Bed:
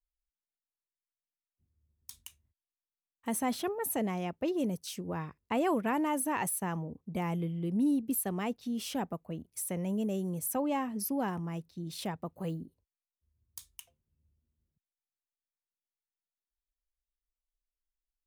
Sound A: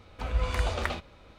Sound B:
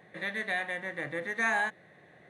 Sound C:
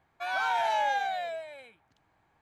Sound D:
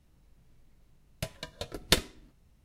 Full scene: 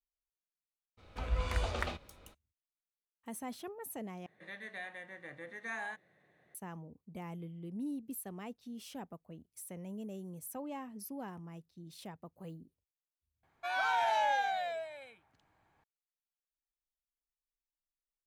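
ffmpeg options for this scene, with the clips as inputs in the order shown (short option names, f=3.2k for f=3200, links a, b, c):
-filter_complex "[0:a]volume=-11dB,asplit=3[a][b][c];[a]atrim=end=4.264[d];[2:a]atrim=end=2.29,asetpts=PTS-STARTPTS,volume=-12.5dB[e];[b]atrim=start=6.546:end=13.434[f];[3:a]atrim=end=2.41,asetpts=PTS-STARTPTS,volume=-3dB[g];[c]atrim=start=15.836[h];[1:a]atrim=end=1.38,asetpts=PTS-STARTPTS,volume=-5.5dB,afade=t=in:d=0.02,afade=t=out:st=1.36:d=0.02,adelay=970[i];[d][e]acrossfade=d=0.004:c1=hsin:c2=hsin[j];[j][f]acrossfade=d=0.004:c1=hsin:c2=hsin[k];[k][g]acrossfade=d=0.004:c1=hsin:c2=hsin[l];[l][h]acrossfade=d=0.004:c1=hsin:c2=hsin[m];[m][i]amix=inputs=2:normalize=0"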